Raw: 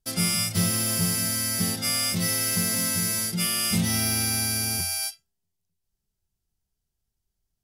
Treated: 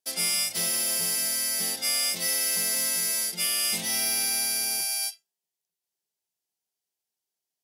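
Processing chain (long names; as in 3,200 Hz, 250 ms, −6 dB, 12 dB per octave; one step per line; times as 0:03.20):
high-pass filter 510 Hz 12 dB per octave
parametric band 1,300 Hz −8 dB 0.52 octaves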